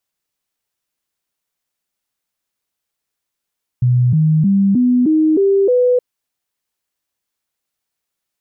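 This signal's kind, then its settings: stepped sine 124 Hz up, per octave 3, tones 7, 0.31 s, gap 0.00 s -9.5 dBFS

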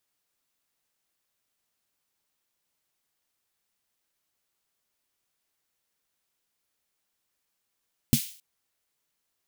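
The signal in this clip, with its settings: snare drum length 0.27 s, tones 140 Hz, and 230 Hz, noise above 2600 Hz, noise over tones -10 dB, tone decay 0.09 s, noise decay 0.46 s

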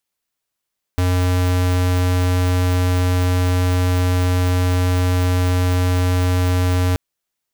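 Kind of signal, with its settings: tone square 90.4 Hz -16.5 dBFS 5.98 s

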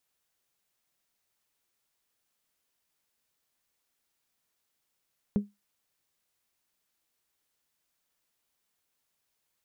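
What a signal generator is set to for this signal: glass hit bell, lowest mode 204 Hz, decay 0.20 s, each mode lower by 11 dB, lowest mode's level -18.5 dB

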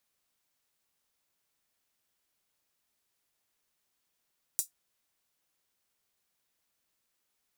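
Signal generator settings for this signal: closed hi-hat, high-pass 7200 Hz, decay 0.13 s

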